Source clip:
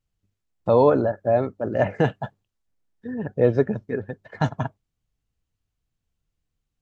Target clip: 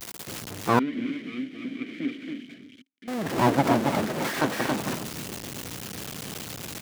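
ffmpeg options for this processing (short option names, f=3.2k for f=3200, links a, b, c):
-filter_complex "[0:a]aeval=exprs='val(0)+0.5*0.0708*sgn(val(0))':c=same,aecho=1:1:275:0.631,aeval=exprs='abs(val(0))':c=same,highpass=150,adynamicequalizer=threshold=0.0178:dfrequency=230:dqfactor=0.88:tfrequency=230:tqfactor=0.88:attack=5:release=100:ratio=0.375:range=2.5:mode=boostabove:tftype=bell,asettb=1/sr,asplit=3[a][b][c];[a]atrim=end=0.794[d];[b]atrim=start=0.79:end=3.08,asetpts=PTS-STARTPTS,afade=t=in:d=0.004:c=qsin,afade=t=out:st=2.286:d=0.004:c=qsin,asplit=3[e][f][g];[e]bandpass=f=270:t=q:w=8,volume=0dB[h];[f]bandpass=f=2.29k:t=q:w=8,volume=-6dB[i];[g]bandpass=f=3.01k:t=q:w=8,volume=-9dB[j];[h][i][j]amix=inputs=3:normalize=0[k];[c]atrim=start=3.076[l];[d][k]acrossfade=d=0.004:c1=hsin:c2=qsin[m];[m][l]acrossfade=d=0.004:c1=qsin:c2=hsin"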